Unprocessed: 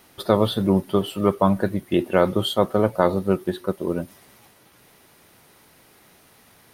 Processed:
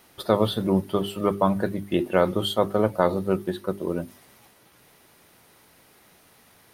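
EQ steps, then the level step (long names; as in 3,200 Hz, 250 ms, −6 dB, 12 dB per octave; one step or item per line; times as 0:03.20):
mains-hum notches 50/100/150/200/250/300/350/400 Hz
−2.0 dB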